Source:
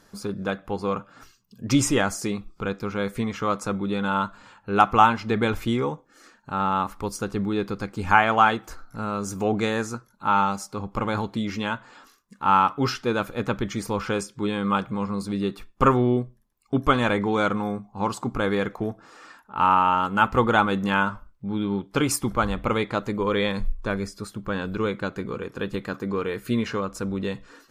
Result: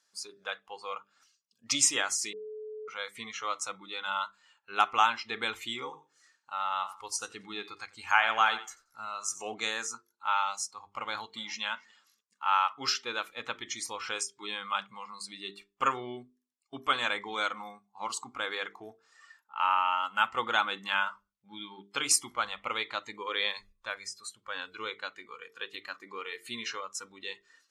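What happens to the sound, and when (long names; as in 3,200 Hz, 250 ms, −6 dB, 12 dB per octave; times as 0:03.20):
0:02.33–0:02.88: beep over 430 Hz −22 dBFS
0:05.84–0:09.54: repeating echo 90 ms, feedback 27%, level −13 dB
0:11.06–0:11.62: delay throw 290 ms, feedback 20%, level −17 dB
whole clip: meter weighting curve ITU-R 468; noise reduction from a noise print of the clip's start 13 dB; mains-hum notches 50/100/150/200/250/300/350/400/450 Hz; level −8.5 dB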